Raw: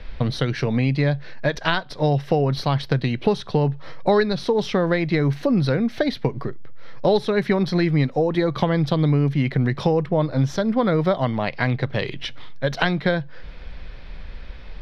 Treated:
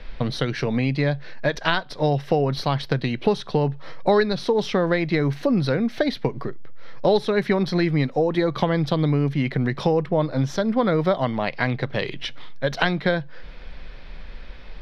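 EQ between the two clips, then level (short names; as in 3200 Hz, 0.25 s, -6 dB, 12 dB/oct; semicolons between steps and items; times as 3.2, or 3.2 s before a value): bell 76 Hz -7.5 dB 1.5 oct; 0.0 dB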